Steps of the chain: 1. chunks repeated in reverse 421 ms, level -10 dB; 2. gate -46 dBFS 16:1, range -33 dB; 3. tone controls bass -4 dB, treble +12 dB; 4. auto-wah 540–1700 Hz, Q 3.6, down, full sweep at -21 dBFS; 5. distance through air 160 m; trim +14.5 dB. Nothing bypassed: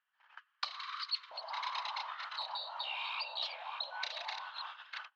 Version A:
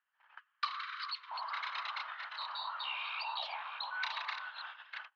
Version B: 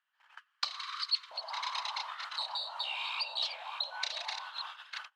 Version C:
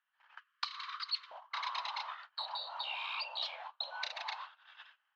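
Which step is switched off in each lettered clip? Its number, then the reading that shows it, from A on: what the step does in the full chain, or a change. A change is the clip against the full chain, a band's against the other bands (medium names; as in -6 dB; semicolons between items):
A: 3, 500 Hz band -6.5 dB; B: 5, 4 kHz band +4.0 dB; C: 1, momentary loudness spread change +11 LU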